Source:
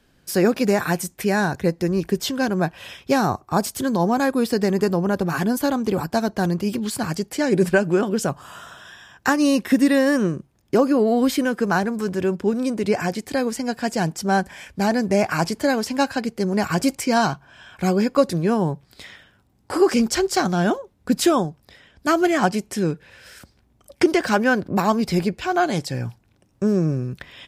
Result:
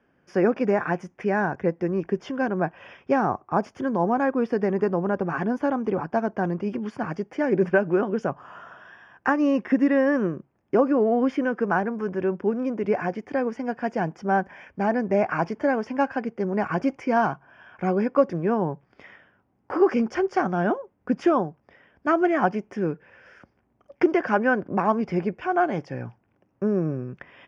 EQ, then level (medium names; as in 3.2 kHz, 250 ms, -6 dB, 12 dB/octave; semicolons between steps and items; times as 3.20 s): boxcar filter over 11 samples; high-pass 300 Hz 6 dB/octave; distance through air 120 m; 0.0 dB